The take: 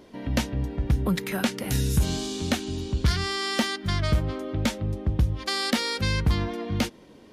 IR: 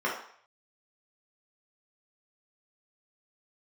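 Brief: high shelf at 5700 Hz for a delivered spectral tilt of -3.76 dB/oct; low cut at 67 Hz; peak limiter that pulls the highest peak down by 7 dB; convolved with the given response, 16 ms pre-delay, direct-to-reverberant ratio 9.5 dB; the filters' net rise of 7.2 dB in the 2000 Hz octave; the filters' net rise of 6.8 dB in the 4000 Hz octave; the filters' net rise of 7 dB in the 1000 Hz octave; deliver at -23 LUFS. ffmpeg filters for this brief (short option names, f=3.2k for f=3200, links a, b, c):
-filter_complex "[0:a]highpass=67,equalizer=f=1k:t=o:g=7,equalizer=f=2k:t=o:g=5,equalizer=f=4k:t=o:g=4.5,highshelf=f=5.7k:g=5.5,alimiter=limit=-12.5dB:level=0:latency=1,asplit=2[a][b];[1:a]atrim=start_sample=2205,adelay=16[c];[b][c]afir=irnorm=-1:irlink=0,volume=-20.5dB[d];[a][d]amix=inputs=2:normalize=0,volume=2dB"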